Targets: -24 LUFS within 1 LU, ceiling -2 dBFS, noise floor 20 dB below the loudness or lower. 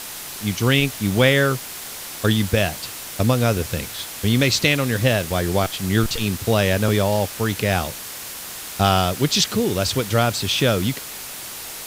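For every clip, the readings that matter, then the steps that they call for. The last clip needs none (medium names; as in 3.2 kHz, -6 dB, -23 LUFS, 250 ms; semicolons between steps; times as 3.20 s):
noise floor -34 dBFS; noise floor target -41 dBFS; loudness -20.5 LUFS; peak level -2.0 dBFS; loudness target -24.0 LUFS
-> noise reduction 7 dB, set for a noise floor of -34 dBFS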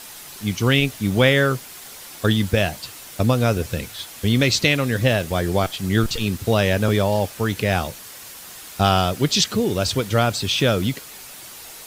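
noise floor -40 dBFS; noise floor target -41 dBFS
-> noise reduction 6 dB, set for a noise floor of -40 dBFS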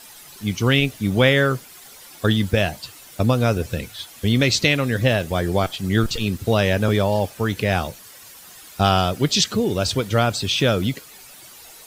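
noise floor -44 dBFS; loudness -20.5 LUFS; peak level -2.5 dBFS; loudness target -24.0 LUFS
-> trim -3.5 dB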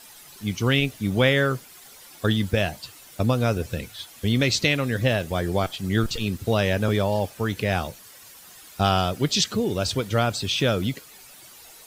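loudness -24.0 LUFS; peak level -6.0 dBFS; noise floor -47 dBFS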